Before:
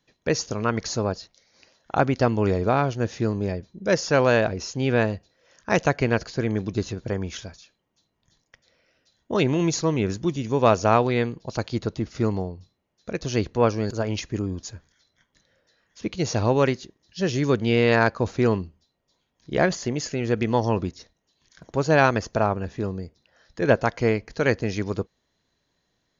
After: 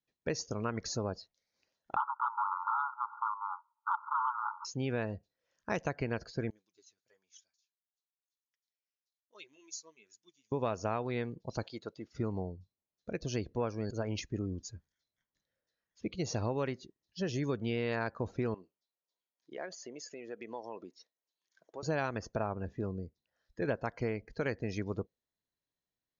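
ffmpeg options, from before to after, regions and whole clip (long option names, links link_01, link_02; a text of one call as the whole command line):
ffmpeg -i in.wav -filter_complex "[0:a]asettb=1/sr,asplit=3[link_01][link_02][link_03];[link_01]atrim=end=1.964[link_04];[link_02]atrim=start=1.96:end=4.65,asetpts=PTS-STARTPTS,afade=type=in:duration=0.004:curve=qsin,afade=type=out:start_time=2.686:duration=0.004:curve=qsin,aeval=exprs='0.562*sin(PI/2*3.98*val(0)/0.562)':channel_layout=same,asuperpass=centerf=1100:order=20:qfactor=1.9,acontrast=32[link_05];[link_03]atrim=start=4.646[link_06];[link_04][link_05]acrossfade=duration=0.004:curve1=hsin:curve2=qsin[link_07];[link_07][link_06]acrossfade=duration=0.004:curve1=qsin:curve2=hsin,asettb=1/sr,asplit=3[link_08][link_09][link_10];[link_08]atrim=end=6.504[link_11];[link_09]atrim=start=6.5:end=10.52,asetpts=PTS-STARTPTS,afade=type=in:duration=0.004:curve=qsin,afade=type=out:start_time=4.016:duration=0.004:curve=qsin,aderivative,flanger=delay=2.5:depth=6.9:regen=-39:speed=1.1:shape=triangular[link_12];[link_10]atrim=start=10.516[link_13];[link_11][link_12]acrossfade=duration=0.004:curve1=hsin:curve2=qsin[link_14];[link_14][link_13]acrossfade=duration=0.004:curve1=qsin:curve2=hsin,asettb=1/sr,asplit=3[link_15][link_16][link_17];[link_15]atrim=end=11.634[link_18];[link_16]atrim=start=11.63:end=12.12,asetpts=PTS-STARTPTS,afade=type=in:duration=0.004:curve=qsin,afade=type=out:start_time=0.486:duration=0.004:curve=qsin,highpass=frequency=770:poles=1,acompressor=mode=upward:threshold=-41dB:ratio=2.5:attack=3.2:release=140:knee=2.83:detection=peak[link_19];[link_17]atrim=start=12.116[link_20];[link_18][link_19]acrossfade=duration=0.004:curve1=hsin:curve2=qsin[link_21];[link_21][link_20]acrossfade=duration=0.004:curve1=qsin:curve2=hsin,asettb=1/sr,asplit=3[link_22][link_23][link_24];[link_22]atrim=end=18.544[link_25];[link_23]atrim=start=18.54:end=21.83,asetpts=PTS-STARTPTS,afade=type=in:duration=0.004:curve=qsin,afade=type=out:start_time=3.286:duration=0.004:curve=qsin,highpass=400,acompressor=threshold=-38dB:ratio=2:attack=3.2:release=140:knee=1:detection=peak[link_26];[link_24]atrim=start=21.826[link_27];[link_25][link_26]acrossfade=duration=0.004:curve1=hsin:curve2=qsin[link_28];[link_28][link_27]acrossfade=duration=0.004:curve1=qsin:curve2=hsin,afftdn=noise_reduction=15:noise_floor=-40,acompressor=threshold=-23dB:ratio=4,volume=-7.5dB" out.wav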